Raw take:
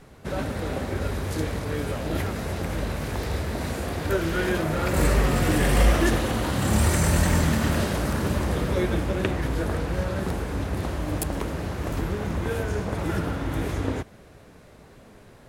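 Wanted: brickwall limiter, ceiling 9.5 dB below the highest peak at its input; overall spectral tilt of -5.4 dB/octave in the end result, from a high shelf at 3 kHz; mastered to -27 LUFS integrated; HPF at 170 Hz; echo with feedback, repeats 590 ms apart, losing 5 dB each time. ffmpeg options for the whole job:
-af "highpass=170,highshelf=f=3000:g=-5,alimiter=limit=0.112:level=0:latency=1,aecho=1:1:590|1180|1770|2360|2950|3540|4130:0.562|0.315|0.176|0.0988|0.0553|0.031|0.0173,volume=1.26"

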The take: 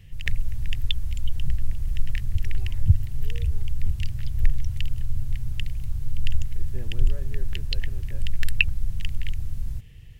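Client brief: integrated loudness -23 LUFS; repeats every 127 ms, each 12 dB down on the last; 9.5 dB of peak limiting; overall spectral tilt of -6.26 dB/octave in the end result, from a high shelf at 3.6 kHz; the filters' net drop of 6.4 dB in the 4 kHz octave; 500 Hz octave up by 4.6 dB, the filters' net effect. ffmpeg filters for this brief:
-af "equalizer=f=500:t=o:g=6,highshelf=f=3600:g=-7.5,equalizer=f=4000:t=o:g=-5,alimiter=limit=0.188:level=0:latency=1,aecho=1:1:127|254|381:0.251|0.0628|0.0157,volume=3.16"

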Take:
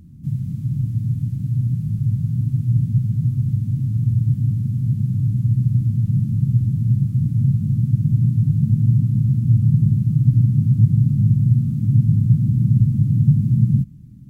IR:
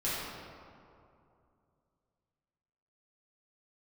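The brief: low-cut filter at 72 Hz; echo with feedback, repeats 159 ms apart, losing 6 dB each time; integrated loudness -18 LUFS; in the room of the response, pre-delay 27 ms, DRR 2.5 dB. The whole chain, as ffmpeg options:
-filter_complex "[0:a]highpass=72,aecho=1:1:159|318|477|636|795|954:0.501|0.251|0.125|0.0626|0.0313|0.0157,asplit=2[s0][s1];[1:a]atrim=start_sample=2205,adelay=27[s2];[s1][s2]afir=irnorm=-1:irlink=0,volume=0.316[s3];[s0][s3]amix=inputs=2:normalize=0,volume=0.668"

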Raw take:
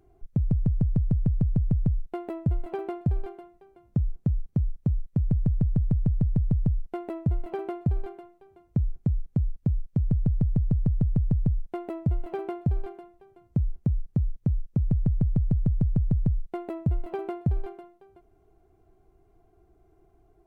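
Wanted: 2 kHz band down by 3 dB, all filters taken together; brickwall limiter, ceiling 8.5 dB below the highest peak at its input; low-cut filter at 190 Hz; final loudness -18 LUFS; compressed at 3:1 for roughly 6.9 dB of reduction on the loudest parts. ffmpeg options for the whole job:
-af "highpass=190,equalizer=f=2000:t=o:g=-4,acompressor=threshold=0.02:ratio=3,volume=23.7,alimiter=limit=0.631:level=0:latency=1"

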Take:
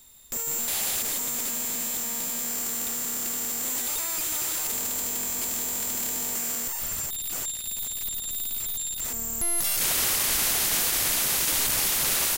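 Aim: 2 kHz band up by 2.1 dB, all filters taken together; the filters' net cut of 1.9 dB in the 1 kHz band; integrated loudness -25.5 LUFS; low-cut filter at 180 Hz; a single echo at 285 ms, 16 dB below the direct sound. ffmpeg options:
-af "highpass=180,equalizer=f=1000:t=o:g=-3.5,equalizer=f=2000:t=o:g=3.5,aecho=1:1:285:0.158,volume=0.944"

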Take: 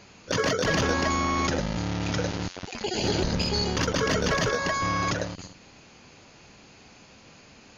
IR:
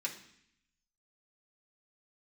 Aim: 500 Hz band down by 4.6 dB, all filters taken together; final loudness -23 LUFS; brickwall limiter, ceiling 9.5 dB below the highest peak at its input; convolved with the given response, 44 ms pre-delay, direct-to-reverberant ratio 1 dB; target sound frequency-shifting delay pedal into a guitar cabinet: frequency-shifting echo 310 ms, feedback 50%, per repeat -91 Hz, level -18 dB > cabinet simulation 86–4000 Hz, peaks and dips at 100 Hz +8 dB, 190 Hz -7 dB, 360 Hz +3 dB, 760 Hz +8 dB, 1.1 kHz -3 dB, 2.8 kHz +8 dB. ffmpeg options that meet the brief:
-filter_complex "[0:a]equalizer=f=500:t=o:g=-8,alimiter=limit=0.0631:level=0:latency=1,asplit=2[s0][s1];[1:a]atrim=start_sample=2205,adelay=44[s2];[s1][s2]afir=irnorm=-1:irlink=0,volume=0.75[s3];[s0][s3]amix=inputs=2:normalize=0,asplit=5[s4][s5][s6][s7][s8];[s5]adelay=310,afreqshift=-91,volume=0.126[s9];[s6]adelay=620,afreqshift=-182,volume=0.0631[s10];[s7]adelay=930,afreqshift=-273,volume=0.0316[s11];[s8]adelay=1240,afreqshift=-364,volume=0.0157[s12];[s4][s9][s10][s11][s12]amix=inputs=5:normalize=0,highpass=86,equalizer=f=100:t=q:w=4:g=8,equalizer=f=190:t=q:w=4:g=-7,equalizer=f=360:t=q:w=4:g=3,equalizer=f=760:t=q:w=4:g=8,equalizer=f=1100:t=q:w=4:g=-3,equalizer=f=2800:t=q:w=4:g=8,lowpass=f=4000:w=0.5412,lowpass=f=4000:w=1.3066,volume=2.24"

